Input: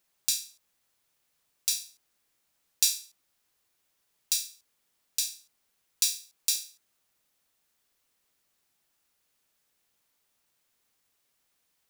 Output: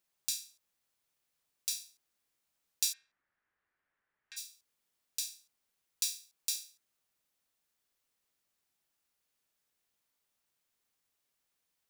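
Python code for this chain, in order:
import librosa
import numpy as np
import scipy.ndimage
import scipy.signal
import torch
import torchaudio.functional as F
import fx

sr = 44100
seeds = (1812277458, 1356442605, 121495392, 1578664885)

y = fx.lowpass_res(x, sr, hz=1700.0, q=3.2, at=(2.92, 4.36), fade=0.02)
y = y * 10.0 ** (-7.5 / 20.0)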